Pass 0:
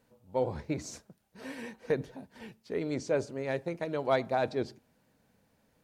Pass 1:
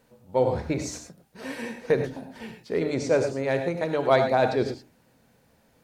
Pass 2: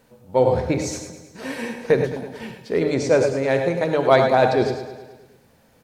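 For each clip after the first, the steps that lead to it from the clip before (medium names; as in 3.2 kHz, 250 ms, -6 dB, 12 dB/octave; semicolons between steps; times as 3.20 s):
hum notches 50/100/150/200/250/300 Hz; gated-style reverb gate 130 ms rising, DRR 6 dB; trim +7 dB
feedback delay 106 ms, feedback 60%, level -12.5 dB; trim +5 dB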